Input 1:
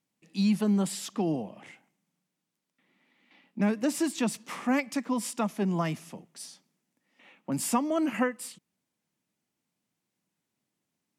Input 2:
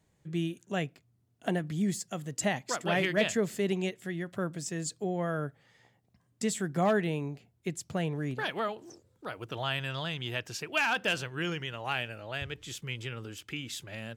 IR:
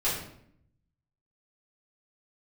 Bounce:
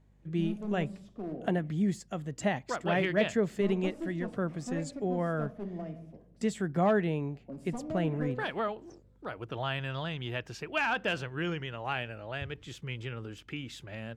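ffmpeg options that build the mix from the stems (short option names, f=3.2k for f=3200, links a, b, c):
-filter_complex "[0:a]lowpass=f=1.4k:p=1,lowshelf=f=780:t=q:w=3:g=6.5,aeval=exprs='clip(val(0),-1,0.15)':c=same,volume=-19.5dB,asplit=2[a][b];[b]volume=-14.5dB[c];[1:a]lowpass=f=1.9k:p=1,volume=1dB[d];[2:a]atrim=start_sample=2205[e];[c][e]afir=irnorm=-1:irlink=0[f];[a][d][f]amix=inputs=3:normalize=0,aeval=exprs='val(0)+0.000794*(sin(2*PI*50*n/s)+sin(2*PI*2*50*n/s)/2+sin(2*PI*3*50*n/s)/3+sin(2*PI*4*50*n/s)/4+sin(2*PI*5*50*n/s)/5)':c=same"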